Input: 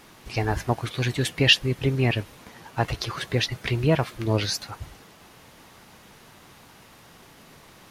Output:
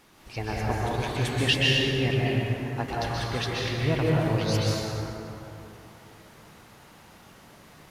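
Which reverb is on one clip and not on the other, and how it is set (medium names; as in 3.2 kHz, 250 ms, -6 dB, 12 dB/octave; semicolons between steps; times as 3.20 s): plate-style reverb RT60 3.2 s, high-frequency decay 0.45×, pre-delay 115 ms, DRR -5.5 dB; trim -7.5 dB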